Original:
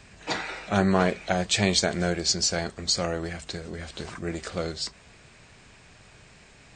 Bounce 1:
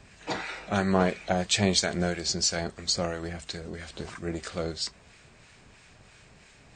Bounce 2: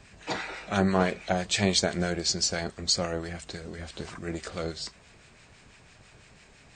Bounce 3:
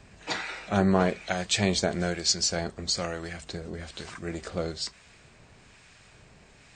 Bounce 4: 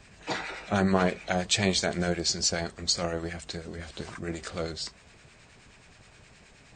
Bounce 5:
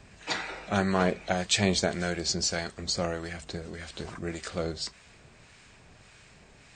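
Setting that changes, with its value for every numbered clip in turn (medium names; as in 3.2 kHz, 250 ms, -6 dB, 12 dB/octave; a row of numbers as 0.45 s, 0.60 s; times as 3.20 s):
harmonic tremolo, rate: 3 Hz, 6 Hz, 1.1 Hz, 9.5 Hz, 1.7 Hz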